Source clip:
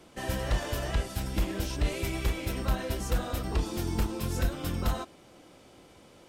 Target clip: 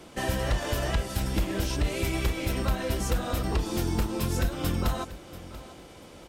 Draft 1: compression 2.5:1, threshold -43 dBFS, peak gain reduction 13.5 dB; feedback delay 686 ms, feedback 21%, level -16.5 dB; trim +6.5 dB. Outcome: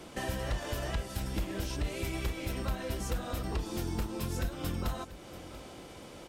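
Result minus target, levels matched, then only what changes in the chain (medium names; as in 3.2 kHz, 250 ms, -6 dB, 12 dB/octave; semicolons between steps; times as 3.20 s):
compression: peak gain reduction +7 dB
change: compression 2.5:1, threshold -31.5 dBFS, peak gain reduction 7 dB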